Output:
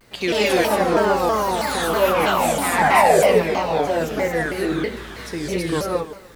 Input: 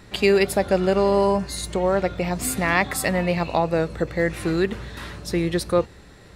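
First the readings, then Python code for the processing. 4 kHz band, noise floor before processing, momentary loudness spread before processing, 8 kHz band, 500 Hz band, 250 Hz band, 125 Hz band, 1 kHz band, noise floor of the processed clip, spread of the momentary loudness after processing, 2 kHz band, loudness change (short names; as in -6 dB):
+4.5 dB, -46 dBFS, 8 LU, +2.0 dB, +2.5 dB, 0.0 dB, -3.0 dB, +8.0 dB, -39 dBFS, 11 LU, +3.5 dB, +3.0 dB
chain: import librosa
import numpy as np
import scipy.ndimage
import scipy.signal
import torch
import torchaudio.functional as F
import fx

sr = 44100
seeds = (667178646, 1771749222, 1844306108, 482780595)

y = fx.bass_treble(x, sr, bass_db=-7, treble_db=-1)
y = fx.spec_paint(y, sr, seeds[0], shape='fall', start_s=2.78, length_s=0.41, low_hz=400.0, high_hz=1000.0, level_db=-16.0)
y = fx.echo_pitch(y, sr, ms=112, semitones=6, count=2, db_per_echo=-6.0)
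y = fx.quant_dither(y, sr, seeds[1], bits=10, dither='triangular')
y = fx.echo_feedback(y, sr, ms=150, feedback_pct=34, wet_db=-15.0)
y = fx.rev_gated(y, sr, seeds[2], gate_ms=250, shape='rising', drr_db=-5.0)
y = fx.vibrato_shape(y, sr, shape='saw_down', rate_hz=3.1, depth_cents=250.0)
y = y * 10.0 ** (-4.0 / 20.0)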